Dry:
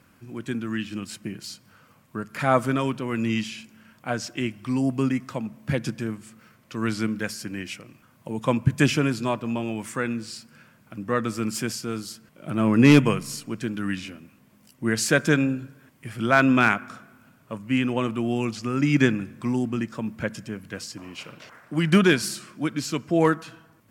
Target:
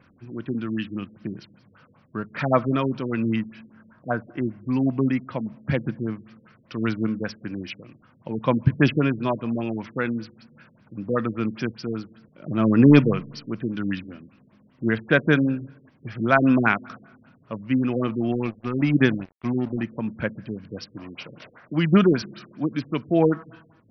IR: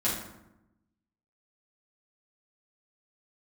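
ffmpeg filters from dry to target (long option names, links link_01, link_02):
-filter_complex "[0:a]asettb=1/sr,asplit=3[link_01][link_02][link_03];[link_01]atrim=end=3.364[link_04];[link_02]atrim=start=3.36:end=4.67,asetpts=PTS-STARTPTS,afade=type=in:duration=0.004:curve=qsin,afade=type=out:start_time=1.306:duration=0.004:curve=qsin,highshelf=frequency=2100:width_type=q:width=1.5:gain=-12[link_05];[link_03]atrim=start=4.666[link_06];[link_04][link_05]acrossfade=duration=0.004:curve1=hsin:curve2=qsin[link_07];[link_07][link_06]acrossfade=duration=0.004:curve1=qsin:curve2=hsin,asettb=1/sr,asplit=3[link_08][link_09][link_10];[link_08]atrim=end=18.324[link_11];[link_09]atrim=start=18.32:end=19.83,asetpts=PTS-STARTPTS,afade=type=in:duration=0.004:curve=qsin,afade=type=out:start_time=1.506:duration=0.004:curve=qsin,aeval=exprs='sgn(val(0))*max(abs(val(0))-0.0141,0)':channel_layout=same[link_12];[link_10]atrim=start=19.826[link_13];[link_11][link_12]acrossfade=duration=0.004:curve1=hsin:curve2=qsin[link_14];[link_14][link_13]acrossfade=duration=0.004:curve1=qsin:curve2=hsin,afftfilt=real='re*lt(b*sr/1024,510*pow(6200/510,0.5+0.5*sin(2*PI*5.1*pts/sr)))':imag='im*lt(b*sr/1024,510*pow(6200/510,0.5+0.5*sin(2*PI*5.1*pts/sr)))':win_size=1024:overlap=0.75,volume=1.5dB"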